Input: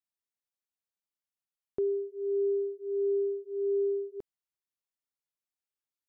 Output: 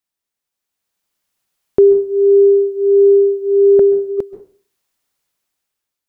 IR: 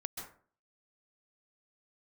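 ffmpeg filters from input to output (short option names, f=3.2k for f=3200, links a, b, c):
-filter_complex "[0:a]asettb=1/sr,asplit=3[a][b][c];[a]atrim=end=3.794[d];[b]atrim=start=3.79:end=4.19,asetpts=PTS-STARTPTS,afade=t=in:d=0.004:c=qsin,afade=t=out:st=0.396:d=0.004:c=qsin,agate=range=-16dB:threshold=-39dB:ratio=16:detection=peak[e];[c]atrim=start=4.186[f];[d][e]acrossfade=d=0.004:c1=hsin:c2=qsin[g];[g][f]acrossfade=d=0.004:c1=qsin:c2=hsin,dynaudnorm=f=260:g=7:m=11dB,asplit=2[h][i];[1:a]atrim=start_sample=2205[j];[i][j]afir=irnorm=-1:irlink=0,volume=-5.5dB[k];[h][k]amix=inputs=2:normalize=0,volume=7dB"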